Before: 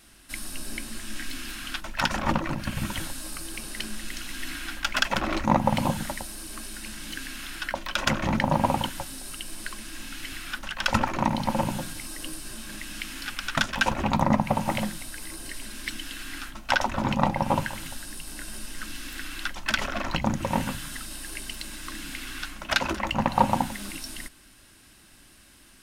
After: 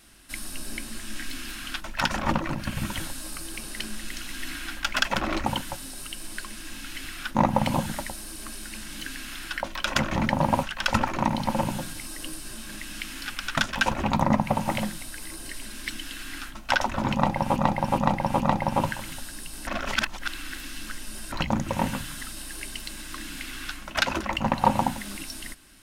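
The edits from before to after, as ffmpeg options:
-filter_complex "[0:a]asplit=9[a][b][c][d][e][f][g][h][i];[a]atrim=end=5.462[j];[b]atrim=start=8.738:end=10.632[k];[c]atrim=start=5.458:end=8.742[l];[d]atrim=start=10.628:end=17.562[m];[e]atrim=start=17.138:end=17.562[n];[f]atrim=start=17.138:end=17.562[o];[g]atrim=start=17.138:end=18.412[p];[h]atrim=start=18.408:end=20.062,asetpts=PTS-STARTPTS,areverse[q];[i]atrim=start=20.058[r];[j][k]acrossfade=d=0.004:c1=hsin:c2=hsin[s];[s][l]acrossfade=d=0.004:c1=hsin:c2=hsin[t];[t][m]acrossfade=d=0.004:c1=hsin:c2=hsin[u];[u][n]acrossfade=d=0.004:c1=hsin:c2=hsin[v];[v][o]acrossfade=d=0.004:c1=hsin:c2=hsin[w];[w][p]acrossfade=d=0.004:c1=hsin:c2=hsin[x];[x][q]acrossfade=d=0.004:c1=hsin:c2=hsin[y];[y][r]acrossfade=d=0.004:c1=hsin:c2=hsin"

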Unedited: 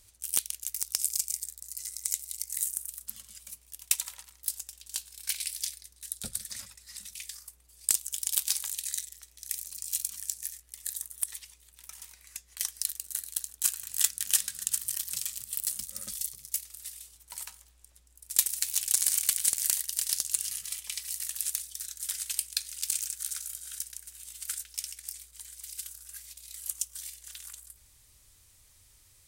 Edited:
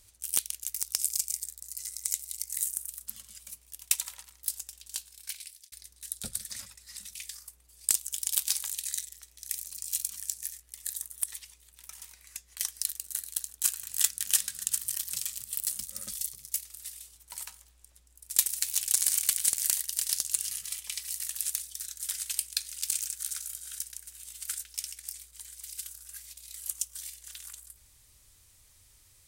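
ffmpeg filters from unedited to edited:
-filter_complex "[0:a]asplit=2[a][b];[a]atrim=end=5.72,asetpts=PTS-STARTPTS,afade=t=out:st=4.82:d=0.9[c];[b]atrim=start=5.72,asetpts=PTS-STARTPTS,afade=t=in:d=0.004:c=hsin[d];[c][d]concat=n=2:v=0:a=1"

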